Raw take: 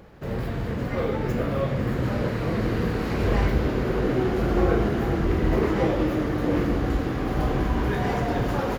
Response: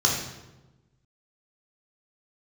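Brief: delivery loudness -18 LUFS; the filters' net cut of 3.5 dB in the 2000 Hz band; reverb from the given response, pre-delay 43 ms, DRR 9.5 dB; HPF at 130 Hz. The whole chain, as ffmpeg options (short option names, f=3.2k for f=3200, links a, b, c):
-filter_complex "[0:a]highpass=130,equalizer=f=2k:t=o:g=-4.5,asplit=2[a][b];[1:a]atrim=start_sample=2205,adelay=43[c];[b][c]afir=irnorm=-1:irlink=0,volume=-23.5dB[d];[a][d]amix=inputs=2:normalize=0,volume=7.5dB"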